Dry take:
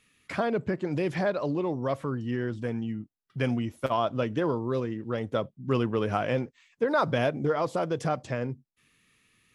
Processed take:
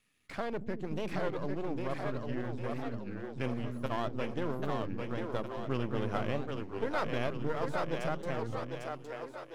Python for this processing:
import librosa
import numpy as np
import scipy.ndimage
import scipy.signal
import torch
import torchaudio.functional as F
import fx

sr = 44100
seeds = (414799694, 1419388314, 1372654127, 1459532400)

y = np.where(x < 0.0, 10.0 ** (-12.0 / 20.0) * x, x)
y = fx.echo_split(y, sr, split_hz=320.0, low_ms=229, high_ms=800, feedback_pct=52, wet_db=-3.5)
y = fx.record_warp(y, sr, rpm=33.33, depth_cents=250.0)
y = F.gain(torch.from_numpy(y), -6.0).numpy()